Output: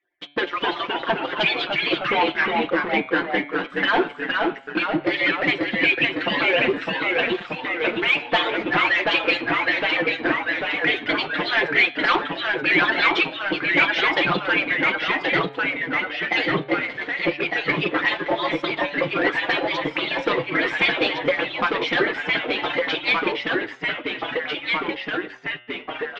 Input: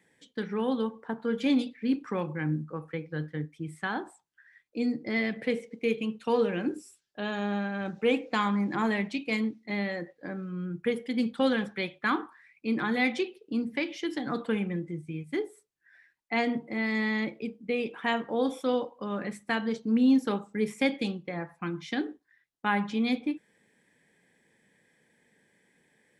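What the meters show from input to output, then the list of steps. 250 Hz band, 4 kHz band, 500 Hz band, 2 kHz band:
+1.0 dB, +16.0 dB, +7.0 dB, +15.5 dB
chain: median-filter separation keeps percussive; sample leveller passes 5; LPF 3300 Hz 24 dB/oct; low shelf 250 Hz -10.5 dB; comb 5.7 ms; dynamic EQ 1300 Hz, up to -5 dB, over -34 dBFS, Q 1.2; de-hum 144.5 Hz, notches 32; echoes that change speed 0.236 s, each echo -1 st, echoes 3; gain +5 dB

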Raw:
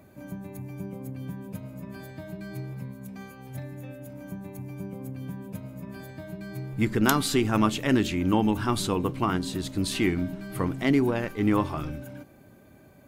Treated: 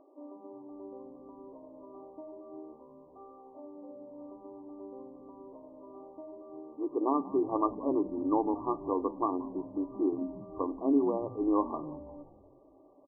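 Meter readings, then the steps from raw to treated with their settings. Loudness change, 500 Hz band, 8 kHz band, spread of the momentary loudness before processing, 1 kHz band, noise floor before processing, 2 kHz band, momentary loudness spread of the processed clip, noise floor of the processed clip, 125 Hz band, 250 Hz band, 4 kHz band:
-4.0 dB, -2.5 dB, under -40 dB, 17 LU, -3.0 dB, -54 dBFS, under -40 dB, 21 LU, -59 dBFS, -23.0 dB, -6.0 dB, under -40 dB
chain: vibrato 0.71 Hz 5.2 cents; FFT band-pass 260–1200 Hz; frequency-shifting echo 0.177 s, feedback 54%, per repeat -81 Hz, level -18.5 dB; gain -2.5 dB

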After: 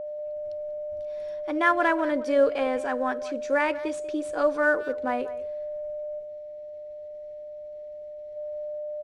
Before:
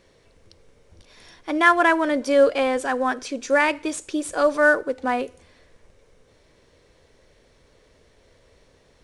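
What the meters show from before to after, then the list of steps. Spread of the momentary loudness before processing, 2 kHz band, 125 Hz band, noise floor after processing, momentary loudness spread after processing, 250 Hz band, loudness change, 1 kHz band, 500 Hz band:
11 LU, -6.5 dB, n/a, -40 dBFS, 18 LU, -4.5 dB, -6.5 dB, -5.5 dB, -2.5 dB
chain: expander -52 dBFS; whine 600 Hz -27 dBFS; high shelf 3500 Hz -10 dB; spectral gain 6.19–8.37, 530–1800 Hz -6 dB; speakerphone echo 0.19 s, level -16 dB; gain -4.5 dB

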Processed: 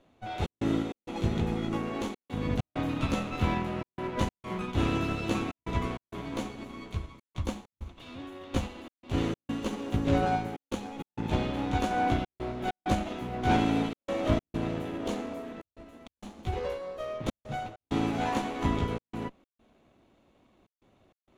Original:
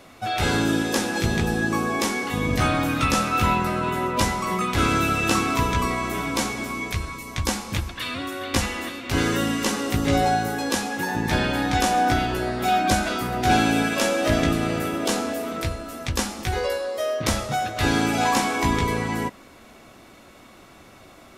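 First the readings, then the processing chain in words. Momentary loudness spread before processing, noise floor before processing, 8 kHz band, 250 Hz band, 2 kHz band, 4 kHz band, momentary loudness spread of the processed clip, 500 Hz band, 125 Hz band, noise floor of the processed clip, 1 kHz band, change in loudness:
8 LU, -48 dBFS, -19.5 dB, -6.5 dB, -14.0 dB, -13.5 dB, 13 LU, -8.0 dB, -6.0 dB, under -85 dBFS, -10.5 dB, -8.5 dB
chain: minimum comb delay 0.3 ms; LPF 1500 Hz 6 dB/oct; step gate "xxx.xx.xxxx" 98 bpm -60 dB; upward expander 1.5:1, over -40 dBFS; gain -2.5 dB

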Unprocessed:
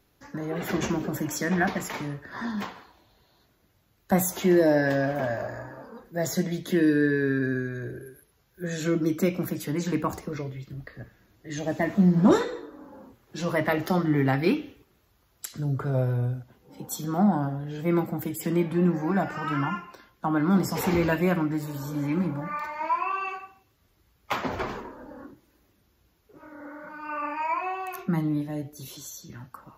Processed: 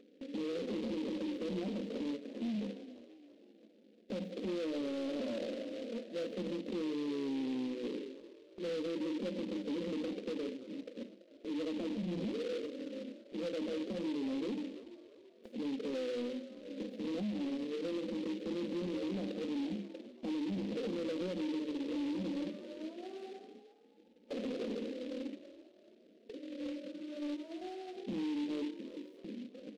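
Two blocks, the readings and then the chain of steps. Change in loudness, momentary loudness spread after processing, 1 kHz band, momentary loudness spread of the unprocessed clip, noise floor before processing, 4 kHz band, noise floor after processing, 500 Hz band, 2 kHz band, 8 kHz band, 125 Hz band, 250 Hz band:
-13.0 dB, 11 LU, -22.5 dB, 18 LU, -66 dBFS, -6.5 dB, -63 dBFS, -10.0 dB, -19.5 dB, under -20 dB, -21.5 dB, -10.5 dB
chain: elliptic band-pass 210–540 Hz, stop band 40 dB; notches 50/100/150/200/250/300 Hz; gate with hold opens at -55 dBFS; comb 4 ms, depth 58%; compressor, threshold -28 dBFS, peak gain reduction 14.5 dB; limiter -31.5 dBFS, peak gain reduction 11.5 dB; upward compressor, threshold -43 dBFS; soft clip -34 dBFS, distortion -18 dB; frequency-shifting echo 0.334 s, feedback 44%, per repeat +41 Hz, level -15.5 dB; noise-modulated delay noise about 2800 Hz, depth 0.06 ms; gain +2.5 dB

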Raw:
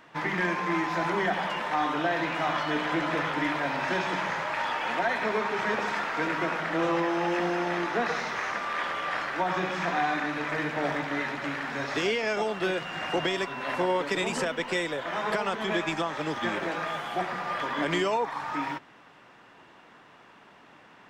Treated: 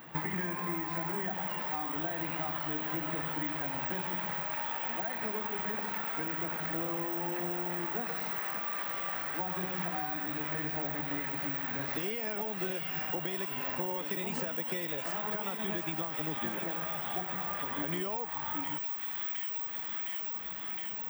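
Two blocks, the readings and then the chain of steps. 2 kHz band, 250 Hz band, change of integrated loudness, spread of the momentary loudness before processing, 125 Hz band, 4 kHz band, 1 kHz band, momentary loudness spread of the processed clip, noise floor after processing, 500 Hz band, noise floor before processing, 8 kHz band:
-10.5 dB, -7.5 dB, -5.0 dB, 4 LU, -3.5 dB, -9.0 dB, -10.0 dB, 1 LU, -39 dBFS, -10.5 dB, -54 dBFS, -8.5 dB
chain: careless resampling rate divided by 2×, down none, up zero stuff; bell 830 Hz +3.5 dB 0.29 oct; on a send: thin delay 0.712 s, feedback 68%, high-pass 2300 Hz, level -4 dB; on the sum: compressor 6:1, threshold -33 dBFS, peak gain reduction 15 dB; bell 160 Hz +8.5 dB 1.7 oct

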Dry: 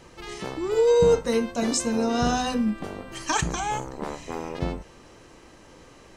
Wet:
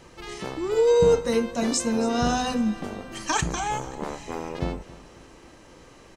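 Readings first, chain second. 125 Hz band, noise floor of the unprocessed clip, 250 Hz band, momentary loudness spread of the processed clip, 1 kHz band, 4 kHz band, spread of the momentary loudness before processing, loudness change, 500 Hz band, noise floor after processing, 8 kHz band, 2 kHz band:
0.0 dB, -50 dBFS, 0.0 dB, 15 LU, 0.0 dB, 0.0 dB, 15 LU, 0.0 dB, 0.0 dB, -50 dBFS, 0.0 dB, 0.0 dB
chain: feedback echo 0.271 s, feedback 48%, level -18 dB

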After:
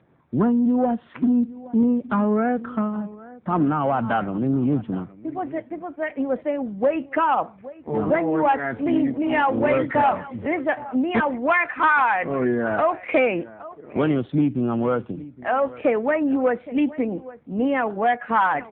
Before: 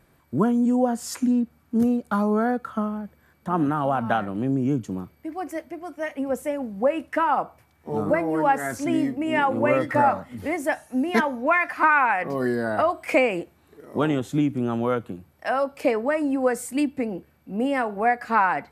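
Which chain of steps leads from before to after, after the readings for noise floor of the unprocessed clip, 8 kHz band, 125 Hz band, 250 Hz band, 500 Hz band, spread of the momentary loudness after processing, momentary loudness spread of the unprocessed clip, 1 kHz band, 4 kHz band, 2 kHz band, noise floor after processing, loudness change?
-61 dBFS, under -40 dB, +2.0 dB, +2.0 dB, +1.5 dB, 10 LU, 12 LU, +1.0 dB, -1.5 dB, +1.0 dB, -49 dBFS, +1.5 dB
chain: on a send: echo 0.817 s -19 dB; on the sum: low-pass opened by the level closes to 1500 Hz, open at -16.5 dBFS; added harmonics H 3 -32 dB, 5 -19 dB, 6 -39 dB, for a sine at -6.5 dBFS; AMR-NB 7.4 kbps 8000 Hz

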